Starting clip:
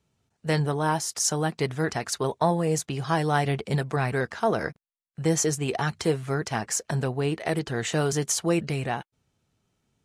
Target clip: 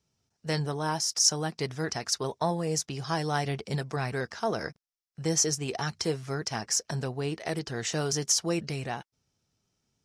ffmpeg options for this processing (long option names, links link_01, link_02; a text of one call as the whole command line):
ffmpeg -i in.wav -af "equalizer=frequency=5400:width=2.4:gain=12.5,volume=-5.5dB" out.wav